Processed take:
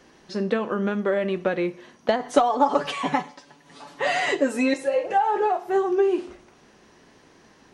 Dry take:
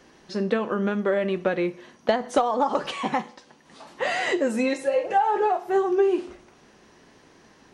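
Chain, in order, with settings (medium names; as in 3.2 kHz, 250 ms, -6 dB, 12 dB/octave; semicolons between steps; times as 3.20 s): 2.19–4.74 s: comb 7 ms, depth 76%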